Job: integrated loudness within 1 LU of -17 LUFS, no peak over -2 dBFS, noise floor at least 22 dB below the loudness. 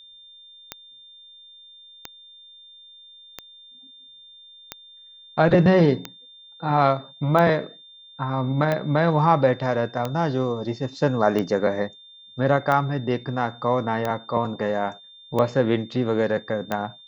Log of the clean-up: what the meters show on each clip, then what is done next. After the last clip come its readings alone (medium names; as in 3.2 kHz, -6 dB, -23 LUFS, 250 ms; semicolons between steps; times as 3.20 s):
clicks found 13; steady tone 3.6 kHz; tone level -45 dBFS; loudness -22.5 LUFS; peak level -4.5 dBFS; loudness target -17.0 LUFS
-> de-click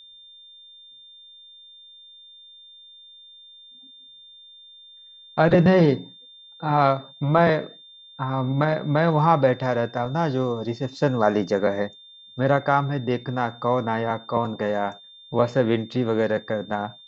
clicks found 0; steady tone 3.6 kHz; tone level -45 dBFS
-> band-stop 3.6 kHz, Q 30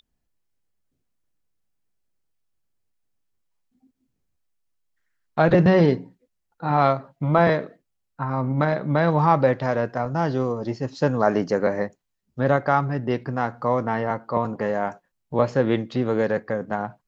steady tone not found; loudness -22.5 LUFS; peak level -4.5 dBFS; loudness target -17.0 LUFS
-> trim +5.5 dB; peak limiter -2 dBFS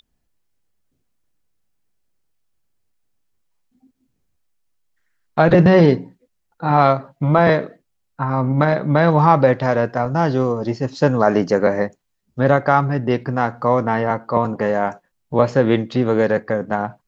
loudness -17.5 LUFS; peak level -2.0 dBFS; noise floor -71 dBFS